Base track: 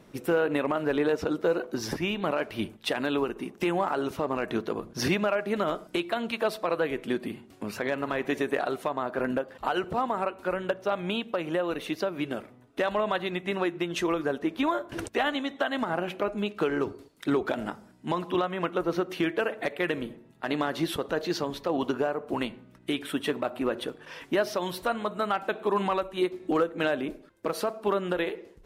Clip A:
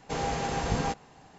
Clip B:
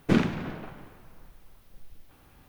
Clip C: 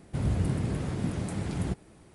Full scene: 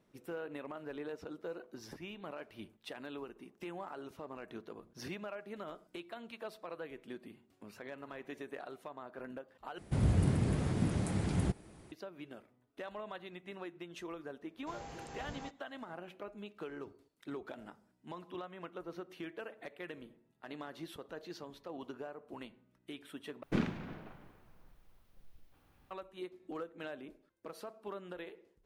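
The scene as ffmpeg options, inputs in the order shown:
ffmpeg -i bed.wav -i cue0.wav -i cue1.wav -i cue2.wav -filter_complex "[0:a]volume=-17.5dB[link_01];[2:a]highshelf=frequency=7400:gain=-4.5[link_02];[link_01]asplit=3[link_03][link_04][link_05];[link_03]atrim=end=9.784[link_06];[3:a]atrim=end=2.14,asetpts=PTS-STARTPTS,volume=-1.5dB[link_07];[link_04]atrim=start=11.916:end=23.434[link_08];[link_02]atrim=end=2.48,asetpts=PTS-STARTPTS,volume=-10.5dB[link_09];[link_05]atrim=start=25.906[link_10];[1:a]atrim=end=1.38,asetpts=PTS-STARTPTS,volume=-18dB,afade=type=in:duration=0.004:curve=hsin,afade=type=out:start_time=1.376:duration=0.004:curve=hsin,adelay=14570[link_11];[link_06][link_07]acrossfade=duration=0.004:curve1=hsin:curve2=hsin[link_12];[link_12][link_08]acrossfade=duration=0.004:curve1=hsin:curve2=hsin[link_13];[link_13][link_09]acrossfade=duration=0.004:curve1=hsin:curve2=hsin[link_14];[link_14][link_10]acrossfade=duration=0.004:curve1=hsin:curve2=hsin[link_15];[link_15][link_11]amix=inputs=2:normalize=0" out.wav

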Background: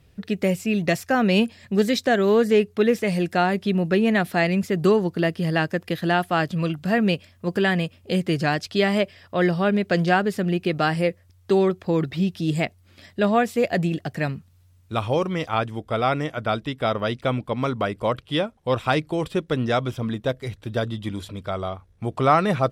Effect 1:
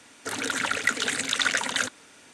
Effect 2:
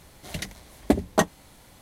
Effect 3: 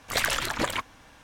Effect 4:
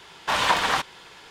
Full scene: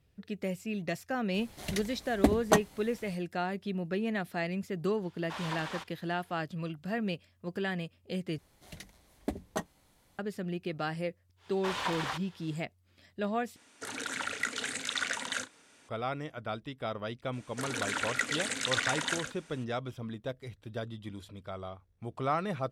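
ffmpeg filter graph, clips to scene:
ffmpeg -i bed.wav -i cue0.wav -i cue1.wav -i cue2.wav -i cue3.wav -filter_complex "[2:a]asplit=2[link_01][link_02];[4:a]asplit=2[link_03][link_04];[1:a]asplit=2[link_05][link_06];[0:a]volume=-13dB[link_07];[link_05]asplit=2[link_08][link_09];[link_09]adelay=35,volume=-11dB[link_10];[link_08][link_10]amix=inputs=2:normalize=0[link_11];[link_06]asplit=2[link_12][link_13];[link_13]adelay=116.6,volume=-7dB,highshelf=frequency=4000:gain=-2.62[link_14];[link_12][link_14]amix=inputs=2:normalize=0[link_15];[link_07]asplit=3[link_16][link_17][link_18];[link_16]atrim=end=8.384[link_19];[link_02]atrim=end=1.81,asetpts=PTS-STARTPTS,volume=-14dB[link_20];[link_17]atrim=start=10.186:end=13.564[link_21];[link_11]atrim=end=2.33,asetpts=PTS-STARTPTS,volume=-9dB[link_22];[link_18]atrim=start=15.886[link_23];[link_01]atrim=end=1.81,asetpts=PTS-STARTPTS,volume=-3dB,afade=type=in:duration=0.004:curve=hsin,afade=type=out:start_time=1.806:duration=0.004:curve=hsin,adelay=1340[link_24];[link_03]atrim=end=1.3,asetpts=PTS-STARTPTS,volume=-18dB,afade=type=in:duration=0.004:curve=hsin,afade=type=out:start_time=1.296:duration=0.004:curve=hsin,adelay=5020[link_25];[link_04]atrim=end=1.3,asetpts=PTS-STARTPTS,volume=-13dB,afade=type=in:duration=0.1,afade=type=out:start_time=1.2:duration=0.1,adelay=11360[link_26];[link_15]atrim=end=2.33,asetpts=PTS-STARTPTS,volume=-7dB,afade=type=in:duration=0.02,afade=type=out:start_time=2.31:duration=0.02,adelay=763812S[link_27];[link_19][link_20]acrossfade=duration=0.004:curve1=hsin:curve2=hsin[link_28];[link_28][link_21]acrossfade=duration=0.004:curve1=hsin:curve2=hsin[link_29];[link_29][link_22]acrossfade=duration=0.004:curve1=hsin:curve2=hsin[link_30];[link_30][link_23]acrossfade=duration=0.004:curve1=hsin:curve2=hsin[link_31];[link_31][link_24][link_25][link_26][link_27]amix=inputs=5:normalize=0" out.wav

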